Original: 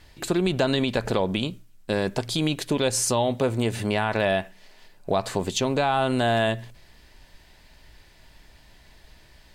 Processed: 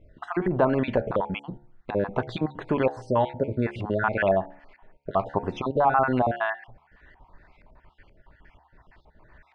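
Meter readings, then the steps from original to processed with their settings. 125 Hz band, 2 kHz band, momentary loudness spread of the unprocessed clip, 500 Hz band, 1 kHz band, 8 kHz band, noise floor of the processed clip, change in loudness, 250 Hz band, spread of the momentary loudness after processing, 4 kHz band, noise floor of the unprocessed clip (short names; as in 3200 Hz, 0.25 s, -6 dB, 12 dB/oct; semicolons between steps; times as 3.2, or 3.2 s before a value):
-3.0 dB, -1.5 dB, 6 LU, -0.5 dB, +2.0 dB, under -30 dB, -62 dBFS, -1.5 dB, -2.5 dB, 10 LU, -15.5 dB, -54 dBFS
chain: random spectral dropouts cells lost 42%; LFO low-pass saw up 2.1 Hz 820–2000 Hz; de-hum 70.93 Hz, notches 13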